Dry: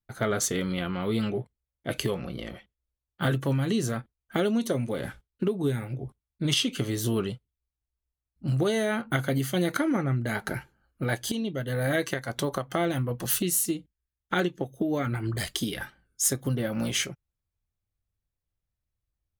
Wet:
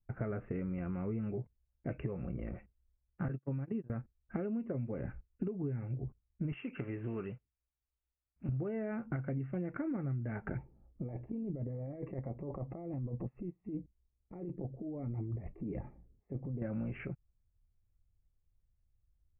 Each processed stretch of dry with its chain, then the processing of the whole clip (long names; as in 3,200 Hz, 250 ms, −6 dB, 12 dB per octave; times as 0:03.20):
0:03.28–0:03.90: noise gate −26 dBFS, range −36 dB + high-pass filter 120 Hz
0:06.52–0:08.49: one scale factor per block 5 bits + spectral tilt +3.5 dB per octave
0:10.57–0:16.62: low-shelf EQ 160 Hz −7.5 dB + compressor whose output falls as the input rises −37 dBFS + moving average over 29 samples
whole clip: Chebyshev low-pass filter 2,700 Hz, order 8; spectral tilt −3.5 dB per octave; downward compressor 4 to 1, threshold −32 dBFS; level −4.5 dB